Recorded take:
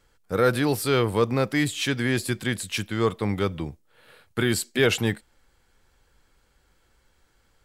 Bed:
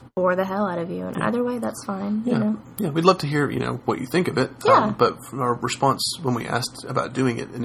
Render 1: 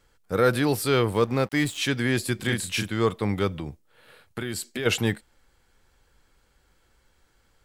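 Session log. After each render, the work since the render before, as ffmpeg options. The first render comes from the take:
ffmpeg -i in.wav -filter_complex "[0:a]asettb=1/sr,asplit=3[link_01][link_02][link_03];[link_01]atrim=end=1.134[link_04];[link_02]atrim=start=1.13:end=1.78,asetpts=PTS-STARTPTS,afade=type=in:duration=0.004:curve=qsin,afade=type=out:start_time=0.646:duration=0.004:curve=qsin,aeval=exprs='sgn(val(0))*max(abs(val(0))-0.00841,0)':channel_layout=same[link_05];[link_03]atrim=start=1.776[link_06];[link_04][link_05]acrossfade=duration=0.004:curve1=hsin:curve2=qsin[link_07];[link_07][link_06]acrossfade=duration=0.004:curve1=qsin:curve2=hsin,asettb=1/sr,asplit=3[link_08][link_09][link_10];[link_08]atrim=end=2.364[link_11];[link_09]atrim=start=2.36:end=2.89,asetpts=PTS-STARTPTS,afade=type=in:duration=0.004:curve=qsin,afade=type=out:start_time=0.526:duration=0.004:curve=qsin,asplit=2[link_12][link_13];[link_13]adelay=34,volume=-3dB[link_14];[link_12][link_14]amix=inputs=2:normalize=0,atrim=end_sample=23373[link_15];[link_10]atrim=start=2.886[link_16];[link_11][link_15]acrossfade=duration=0.004:curve1=hsin:curve2=qsin[link_17];[link_17][link_16]acrossfade=duration=0.004:curve1=qsin:curve2=hsin,asplit=3[link_18][link_19][link_20];[link_18]afade=type=out:start_time=3.52:duration=0.02[link_21];[link_19]acompressor=threshold=-27dB:ratio=6:attack=3.2:release=140:knee=1:detection=peak,afade=type=in:start_time=3.52:duration=0.02,afade=type=out:start_time=4.85:duration=0.02[link_22];[link_20]afade=type=in:start_time=4.85:duration=0.02[link_23];[link_21][link_22][link_23]amix=inputs=3:normalize=0" out.wav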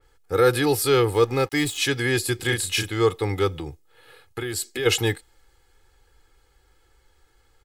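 ffmpeg -i in.wav -af "aecho=1:1:2.4:0.75,adynamicequalizer=threshold=0.0141:dfrequency=3000:dqfactor=0.7:tfrequency=3000:tqfactor=0.7:attack=5:release=100:ratio=0.375:range=2:mode=boostabove:tftype=highshelf" out.wav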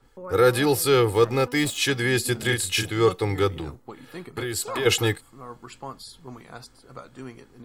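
ffmpeg -i in.wav -i bed.wav -filter_complex "[1:a]volume=-18dB[link_01];[0:a][link_01]amix=inputs=2:normalize=0" out.wav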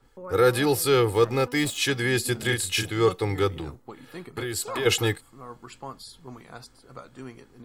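ffmpeg -i in.wav -af "volume=-1.5dB" out.wav

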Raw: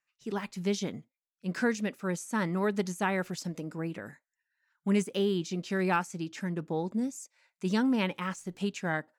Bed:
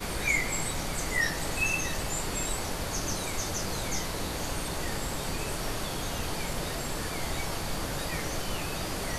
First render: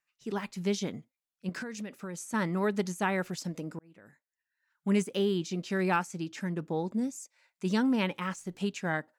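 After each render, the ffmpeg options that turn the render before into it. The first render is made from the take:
ffmpeg -i in.wav -filter_complex "[0:a]asettb=1/sr,asplit=3[link_01][link_02][link_03];[link_01]atrim=end=1.494[link_04];[link_02]atrim=start=1.49:end=2.34,asetpts=PTS-STARTPTS,afade=type=in:duration=0.004:curve=qsin,afade=type=out:start_time=0.846:duration=0.004:curve=qsin,acompressor=threshold=-34dB:ratio=12:attack=3.2:release=140:knee=1:detection=peak[link_05];[link_03]atrim=start=2.336[link_06];[link_04][link_05]acrossfade=duration=0.004:curve1=hsin:curve2=qsin[link_07];[link_07][link_06]acrossfade=duration=0.004:curve1=qsin:curve2=hsin,asplit=2[link_08][link_09];[link_08]atrim=end=3.79,asetpts=PTS-STARTPTS,afade=type=out:start_time=3.786:duration=0.004:curve=hsin[link_10];[link_09]atrim=start=3.79,asetpts=PTS-STARTPTS,afade=type=in:duration=1.14[link_11];[link_10][link_11]concat=n=2:v=0:a=1" out.wav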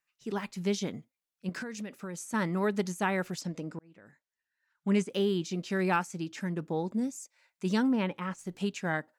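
ffmpeg -i in.wav -filter_complex "[0:a]asettb=1/sr,asplit=3[link_01][link_02][link_03];[link_01]atrim=end=3.414[link_04];[link_02]atrim=start=3.41:end=5.1,asetpts=PTS-STARTPTS,afade=type=in:duration=0.004:curve=qsin,afade=type=out:start_time=1.686:duration=0.004:curve=qsin,lowpass=7500[link_05];[link_03]atrim=start=5.096[link_06];[link_04][link_05]acrossfade=duration=0.004:curve1=hsin:curve2=qsin[link_07];[link_07][link_06]acrossfade=duration=0.004:curve1=qsin:curve2=hsin,asplit=3[link_08][link_09][link_10];[link_08]afade=type=out:start_time=7.87:duration=0.02[link_11];[link_09]highshelf=frequency=2500:gain=-10,afade=type=in:start_time=7.87:duration=0.02,afade=type=out:start_time=8.38:duration=0.02[link_12];[link_10]afade=type=in:start_time=8.38:duration=0.02[link_13];[link_11][link_12][link_13]amix=inputs=3:normalize=0" out.wav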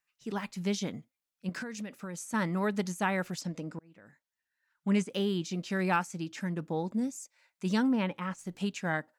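ffmpeg -i in.wav -af "equalizer=frequency=390:width=4.2:gain=-4.5" out.wav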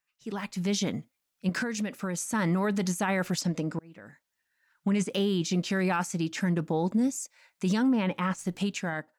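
ffmpeg -i in.wav -af "alimiter=level_in=2.5dB:limit=-24dB:level=0:latency=1:release=21,volume=-2.5dB,dynaudnorm=framelen=120:gausssize=9:maxgain=8dB" out.wav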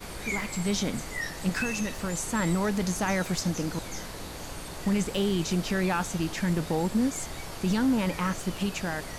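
ffmpeg -i in.wav -i bed.wav -filter_complex "[1:a]volume=-6dB[link_01];[0:a][link_01]amix=inputs=2:normalize=0" out.wav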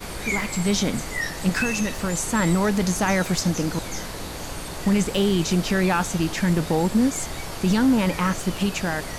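ffmpeg -i in.wav -af "volume=6dB" out.wav

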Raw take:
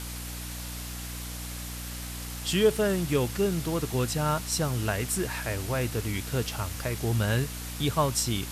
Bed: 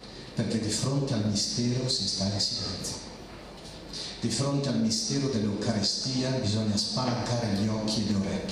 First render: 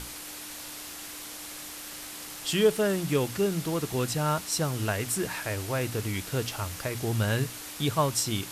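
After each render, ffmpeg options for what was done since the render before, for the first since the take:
ffmpeg -i in.wav -af "bandreject=frequency=60:width_type=h:width=6,bandreject=frequency=120:width_type=h:width=6,bandreject=frequency=180:width_type=h:width=6,bandreject=frequency=240:width_type=h:width=6" out.wav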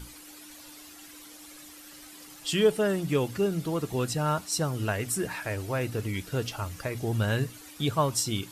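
ffmpeg -i in.wav -af "afftdn=noise_reduction=11:noise_floor=-41" out.wav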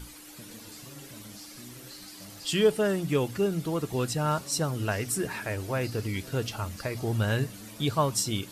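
ffmpeg -i in.wav -i bed.wav -filter_complex "[1:a]volume=-20.5dB[link_01];[0:a][link_01]amix=inputs=2:normalize=0" out.wav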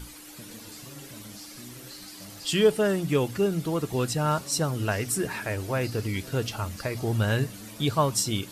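ffmpeg -i in.wav -af "volume=2dB" out.wav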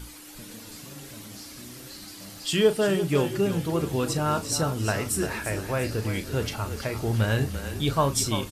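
ffmpeg -i in.wav -filter_complex "[0:a]asplit=2[link_01][link_02];[link_02]adelay=36,volume=-11.5dB[link_03];[link_01][link_03]amix=inputs=2:normalize=0,asplit=2[link_04][link_05];[link_05]asplit=5[link_06][link_07][link_08][link_09][link_10];[link_06]adelay=343,afreqshift=-30,volume=-10dB[link_11];[link_07]adelay=686,afreqshift=-60,volume=-16.2dB[link_12];[link_08]adelay=1029,afreqshift=-90,volume=-22.4dB[link_13];[link_09]adelay=1372,afreqshift=-120,volume=-28.6dB[link_14];[link_10]adelay=1715,afreqshift=-150,volume=-34.8dB[link_15];[link_11][link_12][link_13][link_14][link_15]amix=inputs=5:normalize=0[link_16];[link_04][link_16]amix=inputs=2:normalize=0" out.wav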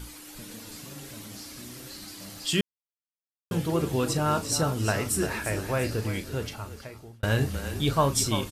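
ffmpeg -i in.wav -filter_complex "[0:a]asplit=4[link_01][link_02][link_03][link_04];[link_01]atrim=end=2.61,asetpts=PTS-STARTPTS,afade=type=out:start_time=2.606:duration=0.004:curve=hsin[link_05];[link_02]atrim=start=2.61:end=3.51,asetpts=PTS-STARTPTS,volume=0[link_06];[link_03]atrim=start=3.51:end=7.23,asetpts=PTS-STARTPTS,afade=type=in:duration=0.004:curve=hsin,afade=type=out:start_time=2.35:duration=1.37[link_07];[link_04]atrim=start=7.23,asetpts=PTS-STARTPTS,afade=type=in:duration=0.004:curve=hsin[link_08];[link_05][link_06][link_07][link_08]concat=n=4:v=0:a=1" out.wav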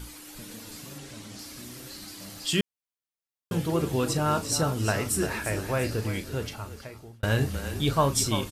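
ffmpeg -i in.wav -filter_complex "[0:a]asettb=1/sr,asplit=3[link_01][link_02][link_03];[link_01]atrim=end=0.984[link_04];[link_02]atrim=start=0.98:end=1.39,asetpts=PTS-STARTPTS,afade=type=in:duration=0.004:curve=qsin,afade=type=out:start_time=0.406:duration=0.004:curve=qsin,lowpass=8700[link_05];[link_03]atrim=start=1.386[link_06];[link_04][link_05]acrossfade=duration=0.004:curve1=hsin:curve2=qsin[link_07];[link_07][link_06]acrossfade=duration=0.004:curve1=qsin:curve2=hsin" out.wav

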